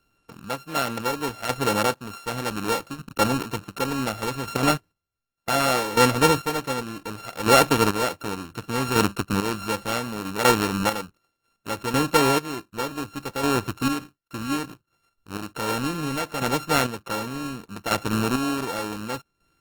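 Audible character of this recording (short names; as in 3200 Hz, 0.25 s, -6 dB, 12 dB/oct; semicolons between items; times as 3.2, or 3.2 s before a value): a buzz of ramps at a fixed pitch in blocks of 32 samples; chopped level 0.67 Hz, depth 60%, duty 30%; Opus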